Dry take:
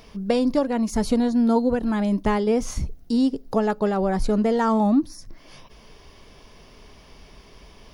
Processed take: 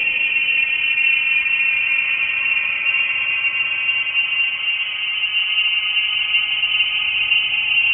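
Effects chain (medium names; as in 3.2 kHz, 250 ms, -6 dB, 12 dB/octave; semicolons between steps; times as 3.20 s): frequency inversion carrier 3 kHz; Paulstretch 12×, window 0.50 s, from 0.47 s; trim +3.5 dB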